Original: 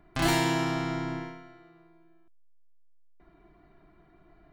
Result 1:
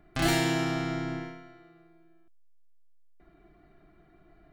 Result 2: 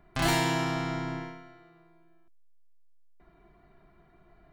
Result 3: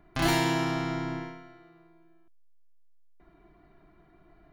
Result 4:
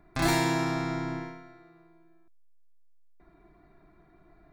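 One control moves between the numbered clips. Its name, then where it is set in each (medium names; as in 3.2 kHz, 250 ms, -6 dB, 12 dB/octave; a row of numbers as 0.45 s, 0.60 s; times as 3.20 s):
band-stop, frequency: 980 Hz, 310 Hz, 8 kHz, 3 kHz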